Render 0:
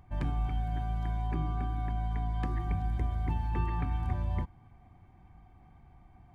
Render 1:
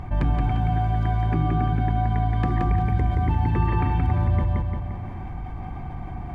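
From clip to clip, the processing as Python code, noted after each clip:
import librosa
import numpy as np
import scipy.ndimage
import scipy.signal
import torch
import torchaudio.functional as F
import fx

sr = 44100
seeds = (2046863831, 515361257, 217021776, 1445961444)

y = fx.lowpass(x, sr, hz=2800.0, slope=6)
y = fx.echo_feedback(y, sr, ms=174, feedback_pct=38, wet_db=-3.5)
y = fx.env_flatten(y, sr, amount_pct=50)
y = y * 10.0 ** (8.0 / 20.0)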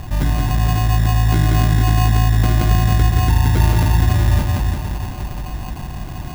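y = fx.air_absorb(x, sr, metres=360.0)
y = fx.echo_split(y, sr, split_hz=330.0, low_ms=309, high_ms=467, feedback_pct=52, wet_db=-8)
y = fx.sample_hold(y, sr, seeds[0], rate_hz=1800.0, jitter_pct=0)
y = y * 10.0 ** (4.5 / 20.0)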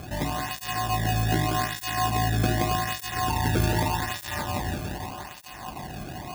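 y = fx.flanger_cancel(x, sr, hz=0.83, depth_ms=1.1)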